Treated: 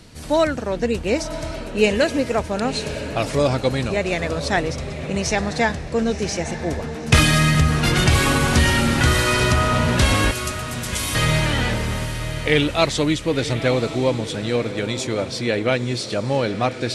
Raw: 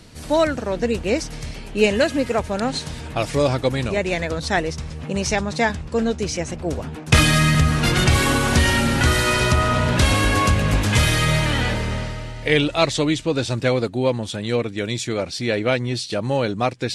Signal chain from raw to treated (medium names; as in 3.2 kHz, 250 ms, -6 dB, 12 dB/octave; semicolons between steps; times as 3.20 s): 10.31–11.15 s: differentiator; echo that smears into a reverb 1005 ms, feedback 42%, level -11 dB